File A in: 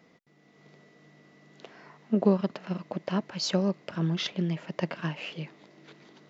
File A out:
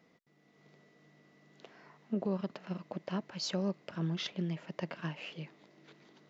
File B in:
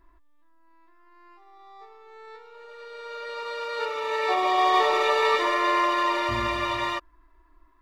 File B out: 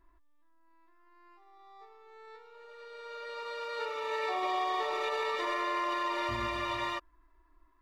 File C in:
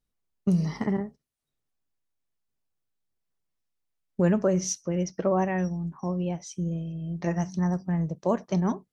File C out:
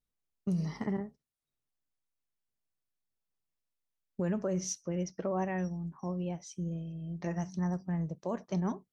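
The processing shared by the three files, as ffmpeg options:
ffmpeg -i in.wav -af "alimiter=limit=-18dB:level=0:latency=1:release=52,volume=-6.5dB" out.wav

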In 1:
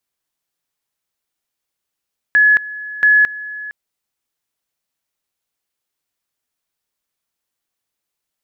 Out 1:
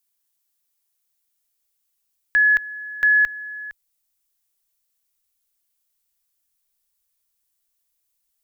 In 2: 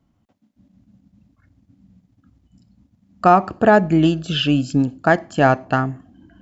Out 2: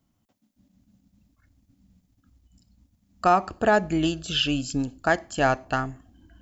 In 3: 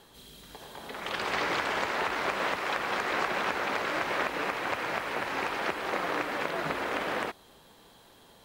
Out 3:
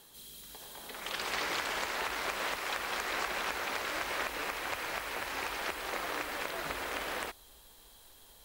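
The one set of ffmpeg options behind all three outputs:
ffmpeg -i in.wav -af "asubboost=boost=9.5:cutoff=50,crystalizer=i=3:c=0,volume=-7dB" out.wav

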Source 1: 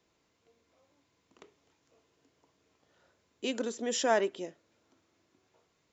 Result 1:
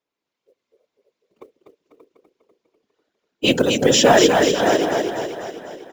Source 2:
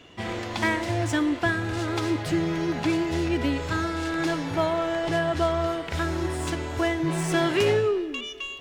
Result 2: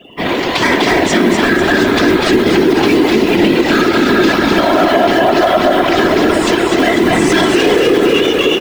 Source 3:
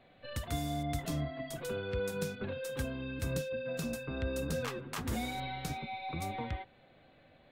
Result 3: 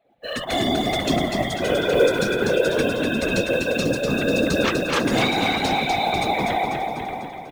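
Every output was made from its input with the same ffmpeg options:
ffmpeg -i in.wav -filter_complex "[0:a]afftdn=noise_reduction=25:noise_floor=-49,acrossover=split=190 5800:gain=0.112 1 0.251[link_01][link_02][link_03];[link_01][link_02][link_03]amix=inputs=3:normalize=0,asplit=2[link_04][link_05];[link_05]adelay=583.1,volume=-8dB,highshelf=frequency=4000:gain=-13.1[link_06];[link_04][link_06]amix=inputs=2:normalize=0,acrossover=split=2200[link_07][link_08];[link_08]dynaudnorm=framelen=110:gausssize=5:maxgain=6dB[link_09];[link_07][link_09]amix=inputs=2:normalize=0,asoftclip=type=tanh:threshold=-19dB,adynamicequalizer=threshold=0.00794:dfrequency=300:dqfactor=1.3:tfrequency=300:tqfactor=1.3:attack=5:release=100:ratio=0.375:range=2:mode=boostabove:tftype=bell,acrusher=bits=7:mode=log:mix=0:aa=0.000001,asplit=2[link_10][link_11];[link_11]aecho=0:1:247|494|741|988|1235|1482|1729|1976:0.596|0.334|0.187|0.105|0.0586|0.0328|0.0184|0.0103[link_12];[link_10][link_12]amix=inputs=2:normalize=0,afftfilt=real='hypot(re,im)*cos(2*PI*random(0))':imag='hypot(re,im)*sin(2*PI*random(1))':win_size=512:overlap=0.75,alimiter=level_in=22dB:limit=-1dB:release=50:level=0:latency=1,volume=-1dB" out.wav

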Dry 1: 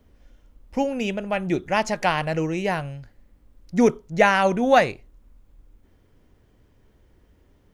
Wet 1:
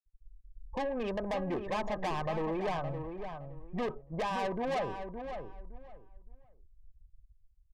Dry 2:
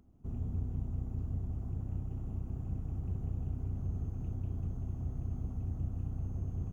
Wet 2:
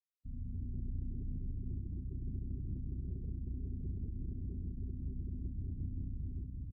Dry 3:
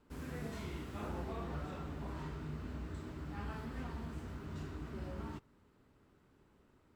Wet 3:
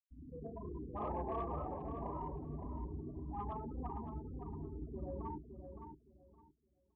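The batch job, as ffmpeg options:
ffmpeg -i in.wav -filter_complex "[0:a]lowpass=6100,highshelf=frequency=1600:width_type=q:width=1.5:gain=-12.5,dynaudnorm=framelen=120:gausssize=9:maxgain=6dB,afftfilt=real='re*gte(hypot(re,im),0.0282)':imag='im*gte(hypot(re,im),0.0282)':win_size=1024:overlap=0.75,acrossover=split=120|430[link_01][link_02][link_03];[link_01]acompressor=threshold=-31dB:ratio=4[link_04];[link_02]acompressor=threshold=-29dB:ratio=4[link_05];[link_03]acompressor=threshold=-27dB:ratio=4[link_06];[link_04][link_05][link_06]amix=inputs=3:normalize=0,volume=20.5dB,asoftclip=hard,volume=-20.5dB,equalizer=frequency=130:width=0.36:gain=-12.5,asoftclip=type=tanh:threshold=-33dB,asuperstop=centerf=1400:order=20:qfactor=7.1,asplit=2[link_07][link_08];[link_08]adelay=565,lowpass=frequency=2500:poles=1,volume=-7.5dB,asplit=2[link_09][link_10];[link_10]adelay=565,lowpass=frequency=2500:poles=1,volume=0.22,asplit=2[link_11][link_12];[link_12]adelay=565,lowpass=frequency=2500:poles=1,volume=0.22[link_13];[link_09][link_11][link_13]amix=inputs=3:normalize=0[link_14];[link_07][link_14]amix=inputs=2:normalize=0,volume=3dB" out.wav

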